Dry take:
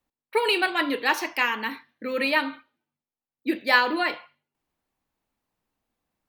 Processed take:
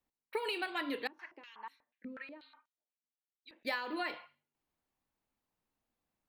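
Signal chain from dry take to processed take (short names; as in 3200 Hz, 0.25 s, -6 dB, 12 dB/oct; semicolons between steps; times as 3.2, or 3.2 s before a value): compressor 16:1, threshold -26 dBFS, peak gain reduction 14 dB; 1.07–3.65 stepped band-pass 8.2 Hz 230–6600 Hz; gain -6.5 dB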